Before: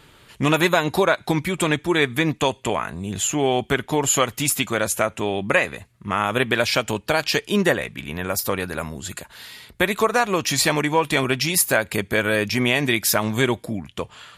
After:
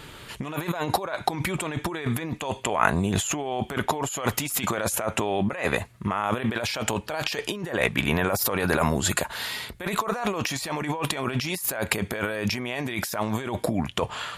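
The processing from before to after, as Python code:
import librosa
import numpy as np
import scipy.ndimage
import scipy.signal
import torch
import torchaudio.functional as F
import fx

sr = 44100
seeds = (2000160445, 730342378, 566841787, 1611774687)

y = fx.over_compress(x, sr, threshold_db=-30.0, ratio=-1.0)
y = fx.dynamic_eq(y, sr, hz=820.0, q=0.79, threshold_db=-44.0, ratio=4.0, max_db=7)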